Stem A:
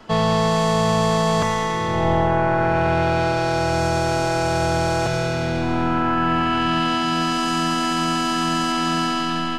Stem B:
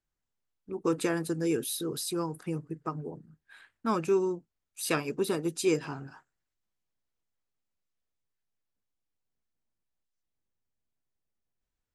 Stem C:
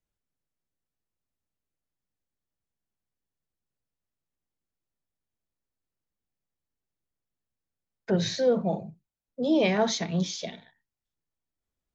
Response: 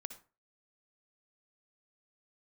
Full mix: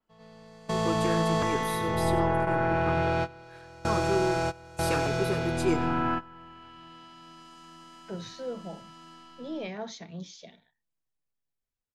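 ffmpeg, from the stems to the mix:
-filter_complex "[0:a]volume=0.299,asplit=2[s0][s1];[s1]volume=0.0794[s2];[1:a]flanger=delay=4.2:depth=5.1:regen=-22:speed=0.2:shape=triangular,volume=0.708,asplit=3[s3][s4][s5];[s4]volume=0.178[s6];[2:a]volume=0.15[s7];[s5]apad=whole_len=422803[s8];[s0][s8]sidechaingate=range=0.0398:threshold=0.00178:ratio=16:detection=peak[s9];[s2][s6]amix=inputs=2:normalize=0,aecho=0:1:95:1[s10];[s9][s3][s7][s10]amix=inputs=4:normalize=0,dynaudnorm=f=160:g=11:m=1.5,adynamicequalizer=threshold=0.00447:dfrequency=4000:dqfactor=0.7:tfrequency=4000:tqfactor=0.7:attack=5:release=100:ratio=0.375:range=2:mode=cutabove:tftype=highshelf"

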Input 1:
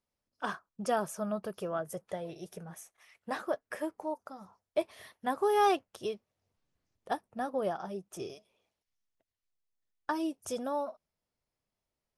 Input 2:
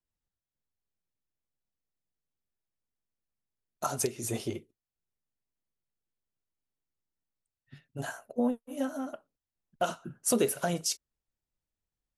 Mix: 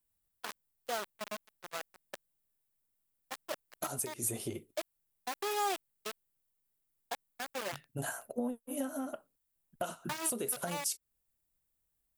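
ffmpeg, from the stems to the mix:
-filter_complex "[0:a]acrusher=bits=4:mix=0:aa=0.000001,highpass=f=510:p=1,agate=range=0.2:threshold=0.0112:ratio=16:detection=peak,volume=0.501,asplit=2[s0][s1];[1:a]acompressor=threshold=0.0141:ratio=3,aexciter=amount=3.2:drive=6.3:freq=8000,volume=1.26[s2];[s1]apad=whole_len=537097[s3];[s2][s3]sidechaincompress=threshold=0.0141:ratio=8:attack=16:release=121[s4];[s0][s4]amix=inputs=2:normalize=0,alimiter=limit=0.0841:level=0:latency=1:release=321"

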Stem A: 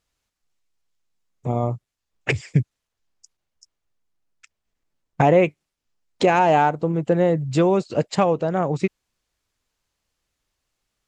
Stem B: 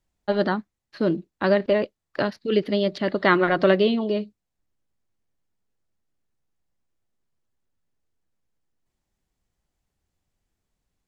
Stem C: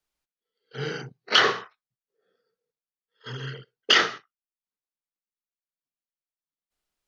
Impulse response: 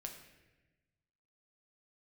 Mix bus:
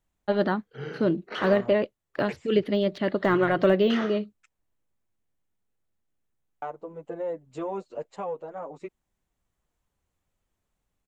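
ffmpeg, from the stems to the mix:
-filter_complex "[0:a]equalizer=f=125:t=o:w=1:g=-10,equalizer=f=500:t=o:w=1:g=7,equalizer=f=1000:t=o:w=1:g=8,dynaudnorm=f=300:g=3:m=2.24,asplit=2[s0][s1];[s1]adelay=7.6,afreqshift=-2.3[s2];[s0][s2]amix=inputs=2:normalize=1,volume=0.168,asplit=3[s3][s4][s5];[s3]atrim=end=5.09,asetpts=PTS-STARTPTS,afade=t=out:st=5.086:d=0.004:c=hsin[s6];[s4]atrim=start=5.09:end=6.62,asetpts=PTS-STARTPTS,volume=0[s7];[s5]atrim=start=6.62,asetpts=PTS-STARTPTS,afade=t=in:d=0.004:c=hsin[s8];[s6][s7][s8]concat=n=3:v=0:a=1[s9];[1:a]deesser=0.9,volume=0.841[s10];[2:a]highshelf=f=2400:g=-11,volume=0.668[s11];[s9][s11]amix=inputs=2:normalize=0,aeval=exprs='0.224*(cos(1*acos(clip(val(0)/0.224,-1,1)))-cos(1*PI/2))+0.00316*(cos(7*acos(clip(val(0)/0.224,-1,1)))-cos(7*PI/2))':c=same,alimiter=limit=0.0631:level=0:latency=1:release=14,volume=1[s12];[s10][s12]amix=inputs=2:normalize=0,equalizer=f=4800:t=o:w=0.49:g=-6.5"

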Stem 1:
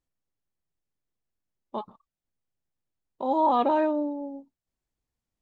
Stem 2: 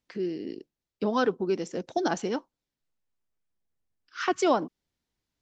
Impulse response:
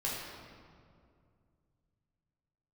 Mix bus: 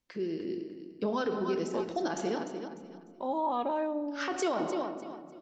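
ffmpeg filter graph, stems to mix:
-filter_complex "[0:a]acompressor=threshold=0.0562:ratio=2,volume=0.531,asplit=2[s0][s1];[s1]volume=0.112[s2];[1:a]volume=0.596,asplit=3[s3][s4][s5];[s4]volume=0.376[s6];[s5]volume=0.355[s7];[2:a]atrim=start_sample=2205[s8];[s2][s6]amix=inputs=2:normalize=0[s9];[s9][s8]afir=irnorm=-1:irlink=0[s10];[s7]aecho=0:1:299|598|897|1196:1|0.3|0.09|0.027[s11];[s0][s3][s10][s11]amix=inputs=4:normalize=0,alimiter=limit=0.0794:level=0:latency=1:release=44"

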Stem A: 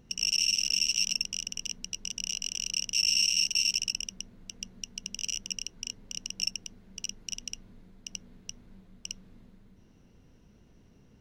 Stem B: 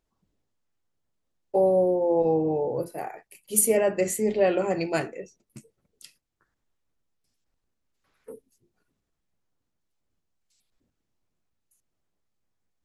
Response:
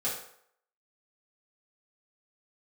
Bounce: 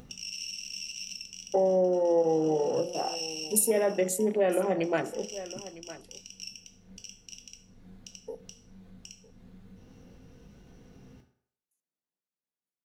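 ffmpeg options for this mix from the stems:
-filter_complex "[0:a]acompressor=mode=upward:threshold=0.0158:ratio=2.5,alimiter=limit=0.0841:level=0:latency=1:release=436,volume=0.335,asplit=2[s0][s1];[s1]volume=0.631[s2];[1:a]highpass=f=160:w=0.5412,highpass=f=160:w=1.3066,afwtdn=0.0141,volume=1.26,asplit=4[s3][s4][s5][s6];[s4]volume=0.1[s7];[s5]volume=0.1[s8];[s6]apad=whole_len=494020[s9];[s0][s9]sidechaincompress=threshold=0.0251:ratio=8:attack=16:release=226[s10];[2:a]atrim=start_sample=2205[s11];[s2][s7]amix=inputs=2:normalize=0[s12];[s12][s11]afir=irnorm=-1:irlink=0[s13];[s8]aecho=0:1:956:1[s14];[s10][s3][s13][s14]amix=inputs=4:normalize=0,acompressor=threshold=0.0501:ratio=2"

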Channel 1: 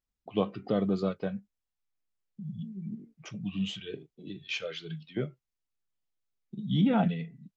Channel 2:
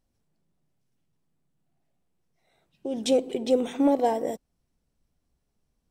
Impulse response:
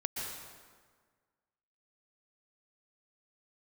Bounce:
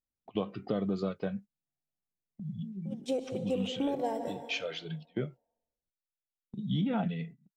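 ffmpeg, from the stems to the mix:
-filter_complex "[0:a]agate=range=0.141:threshold=0.00631:ratio=16:detection=peak,volume=1[s0];[1:a]agate=range=0.178:threshold=0.0447:ratio=16:detection=peak,volume=0.316,asplit=2[s1][s2];[s2]volume=0.447[s3];[2:a]atrim=start_sample=2205[s4];[s3][s4]afir=irnorm=-1:irlink=0[s5];[s0][s1][s5]amix=inputs=3:normalize=0,acompressor=threshold=0.0447:ratio=6"

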